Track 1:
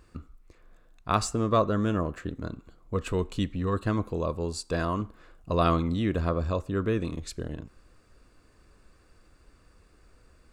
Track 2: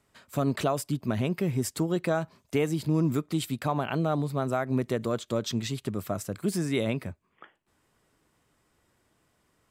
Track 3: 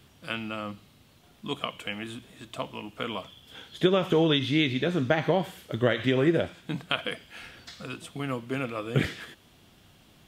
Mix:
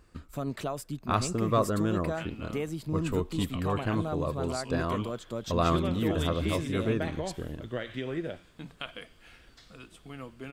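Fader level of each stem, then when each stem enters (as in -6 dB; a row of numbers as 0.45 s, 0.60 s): -2.5 dB, -7.0 dB, -11.0 dB; 0.00 s, 0.00 s, 1.90 s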